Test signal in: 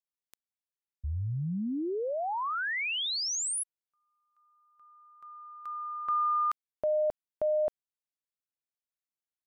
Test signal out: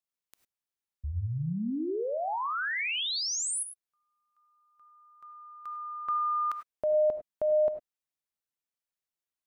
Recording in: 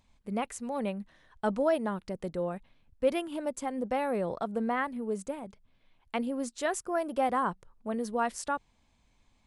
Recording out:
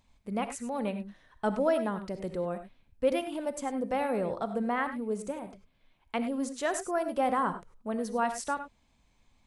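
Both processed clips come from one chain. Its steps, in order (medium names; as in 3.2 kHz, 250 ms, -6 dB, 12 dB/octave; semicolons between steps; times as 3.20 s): gated-style reverb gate 120 ms rising, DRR 9 dB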